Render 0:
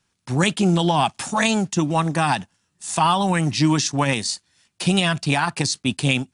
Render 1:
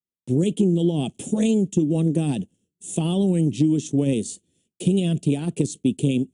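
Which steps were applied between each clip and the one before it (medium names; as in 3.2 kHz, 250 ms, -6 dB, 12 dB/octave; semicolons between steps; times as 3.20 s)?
expander -53 dBFS; FFT filter 110 Hz 0 dB, 190 Hz +6 dB, 440 Hz +9 dB, 1 kHz -27 dB, 1.7 kHz -25 dB, 3.2 kHz -6 dB, 4.8 kHz -22 dB, 7 kHz -4 dB; compression, threshold -16 dBFS, peak gain reduction 9 dB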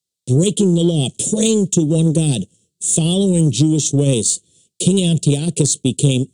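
graphic EQ 125/250/500/1000/2000/4000/8000 Hz +7/-5/+7/-10/-5/+12/+12 dB; in parallel at -9 dB: saturation -17.5 dBFS, distortion -12 dB; on the sum: trim +2.5 dB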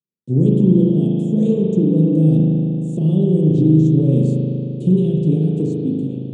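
fade out at the end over 0.78 s; band-pass filter 220 Hz, Q 1.4; spring tank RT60 3 s, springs 38 ms, chirp 75 ms, DRR -4 dB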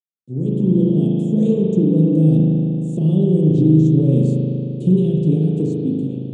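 fade-in on the opening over 0.99 s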